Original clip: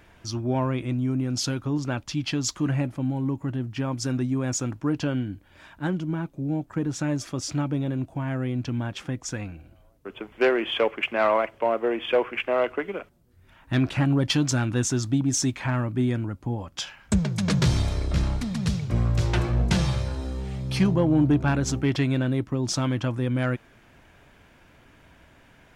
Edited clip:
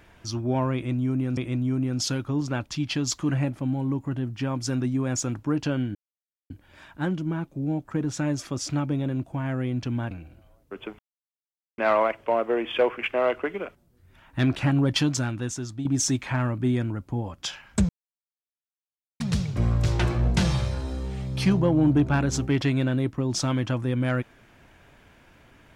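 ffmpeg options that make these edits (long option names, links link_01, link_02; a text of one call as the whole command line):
ffmpeg -i in.wav -filter_complex "[0:a]asplit=9[link_01][link_02][link_03][link_04][link_05][link_06][link_07][link_08][link_09];[link_01]atrim=end=1.372[link_10];[link_02]atrim=start=0.738:end=5.32,asetpts=PTS-STARTPTS,afade=type=out:start_time=4.578:duration=0.004:curve=hsin,apad=pad_dur=0.55[link_11];[link_03]atrim=start=5.32:end=8.932,asetpts=PTS-STARTPTS,afade=type=in:duration=0.004:curve=hsin[link_12];[link_04]atrim=start=9.448:end=10.33,asetpts=PTS-STARTPTS,afade=type=out:start_time=0.878:duration=0.004:curve=hsin[link_13];[link_05]atrim=start=10.33:end=11.12,asetpts=PTS-STARTPTS,volume=0[link_14];[link_06]atrim=start=11.12:end=15.19,asetpts=PTS-STARTPTS,afade=type=in:duration=0.004:curve=hsin,afade=type=out:start_time=3.22:duration=0.85:curve=qua:silence=0.354813[link_15];[link_07]atrim=start=15.19:end=17.23,asetpts=PTS-STARTPTS,afade=type=in:duration=0.004:curve=hsin:silence=0.354813,afade=type=out:start_time=2.036:duration=0.004:curve=hsin[link_16];[link_08]atrim=start=17.23:end=18.54,asetpts=PTS-STARTPTS,volume=0[link_17];[link_09]atrim=start=18.54,asetpts=PTS-STARTPTS,afade=type=in:duration=0.004:curve=hsin[link_18];[link_11][link_12]concat=n=2:v=0:a=1[link_19];[link_10][link_19]acrossfade=duration=0.004:curve1=hsin:curve2=hsin[link_20];[link_13][link_14][link_15][link_16][link_17][link_18]concat=n=6:v=0:a=1[link_21];[link_20][link_21]acrossfade=duration=0.004:curve1=hsin:curve2=hsin" out.wav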